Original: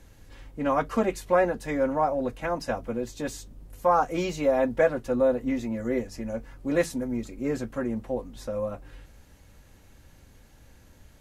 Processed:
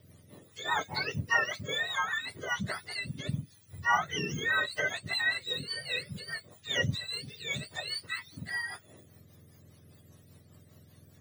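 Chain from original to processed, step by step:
frequency axis turned over on the octave scale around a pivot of 1,000 Hz
rotating-speaker cabinet horn 5 Hz

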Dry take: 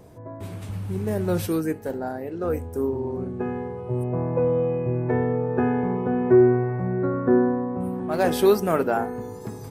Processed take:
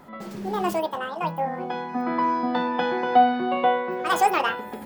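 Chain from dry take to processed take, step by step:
hum removal 48.86 Hz, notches 31
wrong playback speed 7.5 ips tape played at 15 ips

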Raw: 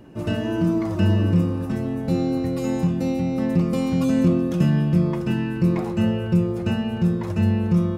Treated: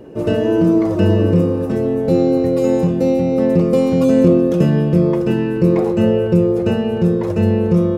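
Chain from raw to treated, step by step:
parametric band 460 Hz +14.5 dB 0.85 octaves
level +2.5 dB

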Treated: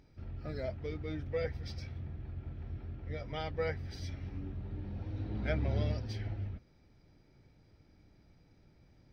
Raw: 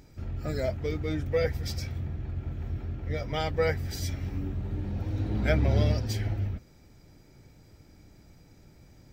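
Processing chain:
Savitzky-Golay smoothing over 15 samples
level −8.5 dB

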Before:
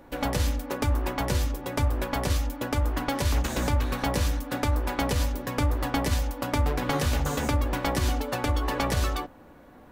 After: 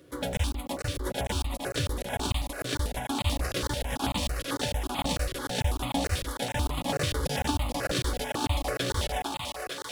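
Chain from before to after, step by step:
formants moved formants −5 semitones
in parallel at −11.5 dB: log-companded quantiser 4 bits
on the sum: high-pass filter 58 Hz 24 dB per octave
parametric band 3,500 Hz +6 dB 0.52 octaves
on a send: feedback echo with a high-pass in the loop 458 ms, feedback 81%, high-pass 370 Hz, level −4 dB
on the sum: regular buffer underruns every 0.15 s, samples 1,024, zero, from 0:00.37
step-sequenced phaser 9.1 Hz 230–1,600 Hz
level −2 dB

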